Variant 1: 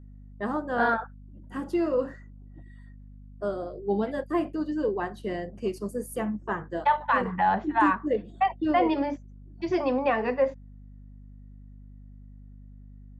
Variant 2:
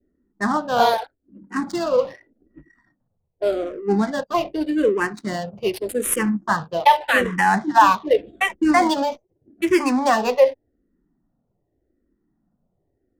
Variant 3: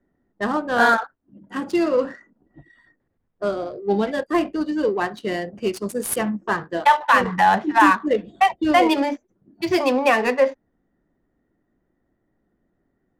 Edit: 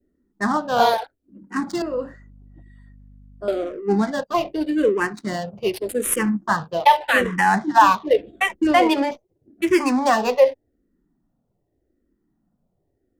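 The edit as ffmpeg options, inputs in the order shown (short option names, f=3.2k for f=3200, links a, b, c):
-filter_complex "[1:a]asplit=3[a][b][c];[a]atrim=end=1.822[d];[0:a]atrim=start=1.818:end=3.482[e];[b]atrim=start=3.478:end=8.672[f];[2:a]atrim=start=8.668:end=9.112[g];[c]atrim=start=9.108[h];[d][e]acrossfade=d=0.004:c1=hsin:c2=hsin[i];[i][f]acrossfade=d=0.004:c1=hsin:c2=hsin[j];[j][g]acrossfade=d=0.004:c1=hsin:c2=hsin[k];[k][h]acrossfade=d=0.004:c1=hsin:c2=hsin"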